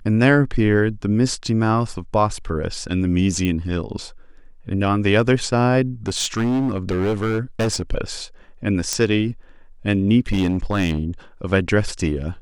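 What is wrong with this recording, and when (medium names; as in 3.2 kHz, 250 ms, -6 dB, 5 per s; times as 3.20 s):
3.45 s: pop -11 dBFS
6.08–7.82 s: clipped -16.5 dBFS
8.93 s: pop -6 dBFS
10.30–11.00 s: clipped -14 dBFS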